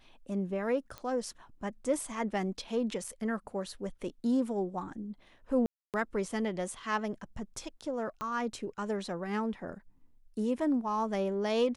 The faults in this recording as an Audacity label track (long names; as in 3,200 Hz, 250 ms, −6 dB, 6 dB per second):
0.980000	0.980000	click −26 dBFS
3.040000	3.040000	drop-out 4.1 ms
5.660000	5.940000	drop-out 278 ms
8.210000	8.210000	click −24 dBFS